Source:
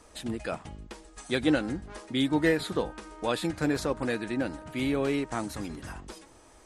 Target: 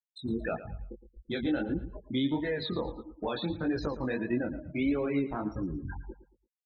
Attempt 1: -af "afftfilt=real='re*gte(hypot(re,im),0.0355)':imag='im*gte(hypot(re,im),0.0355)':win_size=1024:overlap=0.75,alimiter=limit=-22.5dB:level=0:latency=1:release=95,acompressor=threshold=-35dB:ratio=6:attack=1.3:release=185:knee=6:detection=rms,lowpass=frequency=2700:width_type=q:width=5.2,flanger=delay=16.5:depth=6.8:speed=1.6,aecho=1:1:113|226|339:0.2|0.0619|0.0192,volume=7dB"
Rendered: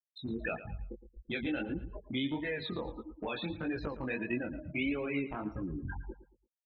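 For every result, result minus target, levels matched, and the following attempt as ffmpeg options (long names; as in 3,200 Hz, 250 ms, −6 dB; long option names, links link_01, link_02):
downward compressor: peak gain reduction +6 dB; 2,000 Hz band +5.5 dB
-af "afftfilt=real='re*gte(hypot(re,im),0.0355)':imag='im*gte(hypot(re,im),0.0355)':win_size=1024:overlap=0.75,alimiter=limit=-22.5dB:level=0:latency=1:release=95,acompressor=threshold=-27.5dB:ratio=6:attack=1.3:release=185:knee=6:detection=rms,lowpass=frequency=2700:width_type=q:width=5.2,flanger=delay=16.5:depth=6.8:speed=1.6,aecho=1:1:113|226|339:0.2|0.0619|0.0192,volume=7dB"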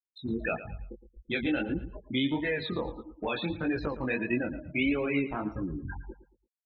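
2,000 Hz band +5.5 dB
-af "afftfilt=real='re*gte(hypot(re,im),0.0355)':imag='im*gte(hypot(re,im),0.0355)':win_size=1024:overlap=0.75,alimiter=limit=-22.5dB:level=0:latency=1:release=95,acompressor=threshold=-27.5dB:ratio=6:attack=1.3:release=185:knee=6:detection=rms,flanger=delay=16.5:depth=6.8:speed=1.6,aecho=1:1:113|226|339:0.2|0.0619|0.0192,volume=7dB"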